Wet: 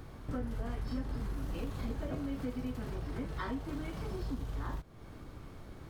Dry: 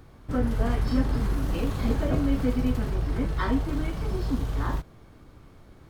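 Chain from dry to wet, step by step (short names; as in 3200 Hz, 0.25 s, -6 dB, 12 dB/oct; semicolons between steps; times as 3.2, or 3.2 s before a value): 2.08–4.22 low shelf 72 Hz -8 dB; compressor 3:1, threshold -41 dBFS, peak gain reduction 17 dB; gain +2 dB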